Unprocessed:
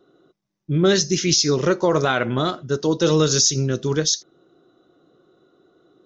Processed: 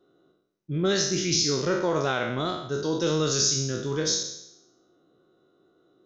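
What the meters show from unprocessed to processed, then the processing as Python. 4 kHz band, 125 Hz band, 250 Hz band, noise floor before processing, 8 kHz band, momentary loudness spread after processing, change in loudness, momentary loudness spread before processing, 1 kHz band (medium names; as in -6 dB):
-5.0 dB, -7.5 dB, -7.0 dB, -78 dBFS, no reading, 8 LU, -6.0 dB, 7 LU, -6.0 dB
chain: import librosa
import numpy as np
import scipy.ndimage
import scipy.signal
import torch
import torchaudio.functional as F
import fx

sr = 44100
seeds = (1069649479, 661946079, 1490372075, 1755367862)

y = fx.spec_trails(x, sr, decay_s=0.79)
y = y * librosa.db_to_amplitude(-8.5)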